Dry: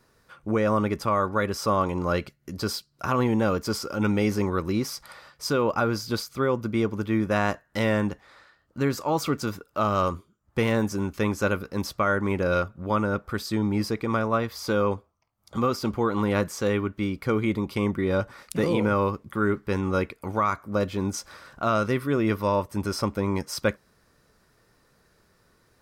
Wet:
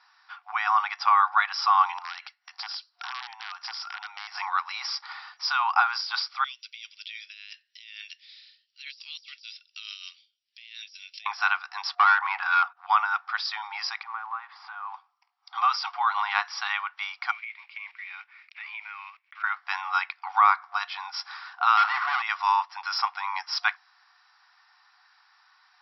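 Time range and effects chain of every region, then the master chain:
0:01.98–0:04.35: low-shelf EQ 240 Hz −11 dB + downward compressor 12 to 1, threshold −35 dBFS + wrap-around overflow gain 31 dB
0:06.44–0:11.26: Butterworth high-pass 2,700 Hz + compressor whose output falls as the input rises −50 dBFS
0:11.89–0:12.77: noise gate −48 dBFS, range −15 dB + mid-hump overdrive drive 14 dB, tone 1,200 Hz, clips at −12.5 dBFS + upward compression, threshold −39 dBFS
0:14.03–0:14.94: one scale factor per block 5 bits + low-pass filter 1,500 Hz + downward compressor 3 to 1, threshold −34 dBFS
0:17.31–0:19.44: one scale factor per block 5 bits + resonant band-pass 2,300 Hz, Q 6.7 + downward compressor 5 to 1, threshold −40 dBFS
0:21.77–0:22.22: running median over 15 samples + mid-hump overdrive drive 24 dB, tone 1,600 Hz, clips at −14 dBFS
whole clip: brick-wall band-pass 720–5,700 Hz; de-essing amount 70%; level +6.5 dB

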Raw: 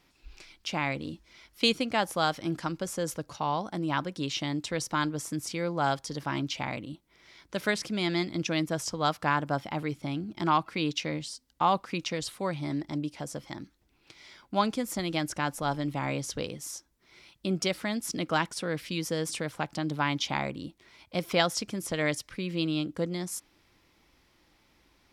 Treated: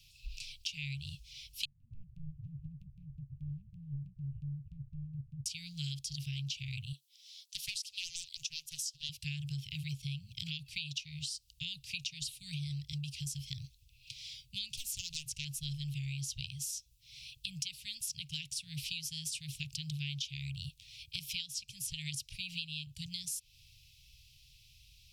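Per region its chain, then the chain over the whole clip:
0:01.65–0:05.46: variable-slope delta modulation 16 kbit/s + inverse Chebyshev low-pass filter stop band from 1,700 Hz, stop band 50 dB + downward compressor 10 to 1, threshold −33 dBFS
0:06.92–0:09.09: Butterworth high-pass 340 Hz 96 dB per octave + parametric band 2,300 Hz −12 dB 0.74 octaves + highs frequency-modulated by the lows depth 0.41 ms
0:14.76–0:15.45: de-essing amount 35% + highs frequency-modulated by the lows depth 0.75 ms
whole clip: Chebyshev band-stop filter 140–2,600 Hz, order 5; downward compressor 12 to 1, threshold −44 dBFS; level +8 dB

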